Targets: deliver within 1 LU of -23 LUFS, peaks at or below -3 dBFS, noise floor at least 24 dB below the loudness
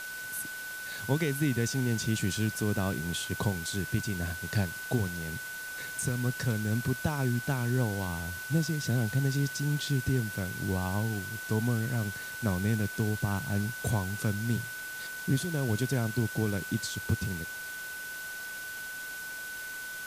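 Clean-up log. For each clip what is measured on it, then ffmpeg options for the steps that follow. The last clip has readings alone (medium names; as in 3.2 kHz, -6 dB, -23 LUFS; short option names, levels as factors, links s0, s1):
steady tone 1.5 kHz; tone level -38 dBFS; noise floor -40 dBFS; noise floor target -56 dBFS; loudness -31.5 LUFS; peak level -13.5 dBFS; loudness target -23.0 LUFS
-> -af "bandreject=f=1500:w=30"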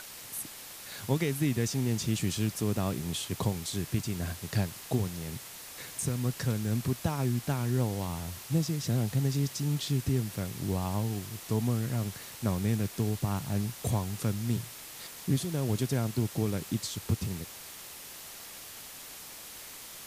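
steady tone not found; noise floor -46 dBFS; noise floor target -56 dBFS
-> -af "afftdn=nr=10:nf=-46"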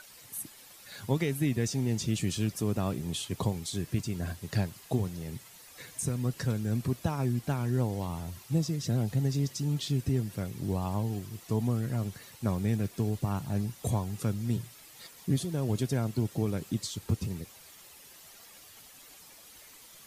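noise floor -53 dBFS; noise floor target -56 dBFS
-> -af "afftdn=nr=6:nf=-53"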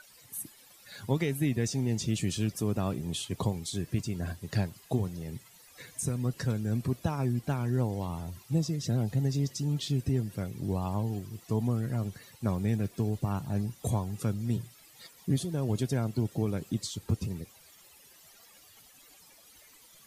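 noise floor -57 dBFS; loudness -32.0 LUFS; peak level -14.0 dBFS; loudness target -23.0 LUFS
-> -af "volume=2.82"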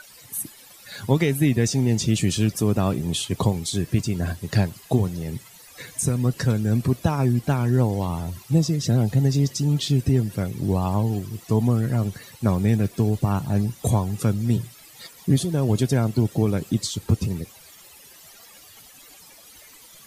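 loudness -23.0 LUFS; peak level -5.0 dBFS; noise floor -48 dBFS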